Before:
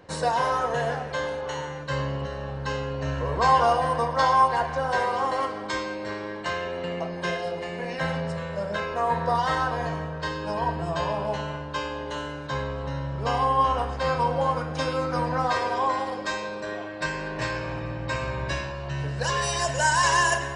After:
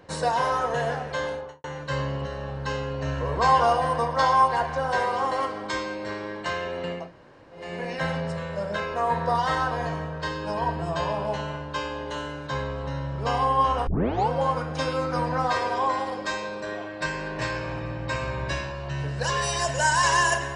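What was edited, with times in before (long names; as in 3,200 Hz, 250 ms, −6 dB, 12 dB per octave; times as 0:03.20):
0:01.29–0:01.64: fade out and dull
0:07.02–0:07.62: fill with room tone, crossfade 0.24 s
0:13.87: tape start 0.42 s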